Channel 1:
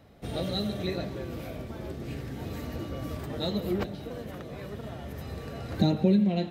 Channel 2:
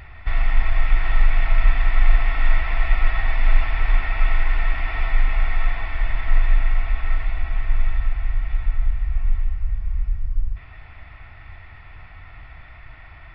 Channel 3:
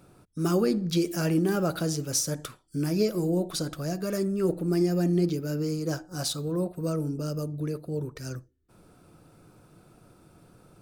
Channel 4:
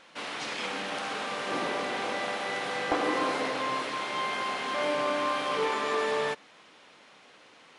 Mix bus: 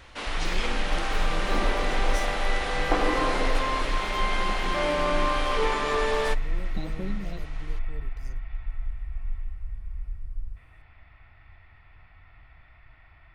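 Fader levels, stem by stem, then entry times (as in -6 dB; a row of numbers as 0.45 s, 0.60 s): -13.0 dB, -11.5 dB, -15.5 dB, +2.5 dB; 0.95 s, 0.00 s, 0.00 s, 0.00 s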